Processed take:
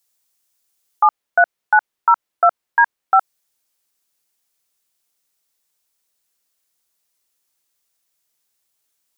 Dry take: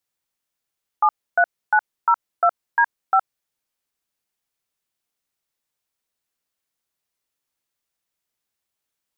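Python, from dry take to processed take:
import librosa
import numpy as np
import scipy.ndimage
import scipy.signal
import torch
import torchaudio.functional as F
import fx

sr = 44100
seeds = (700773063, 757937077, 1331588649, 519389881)

y = fx.bass_treble(x, sr, bass_db=-4, treble_db=fx.steps((0.0, 10.0), (1.03, -3.0), (3.18, 7.0)))
y = y * librosa.db_to_amplitude(4.5)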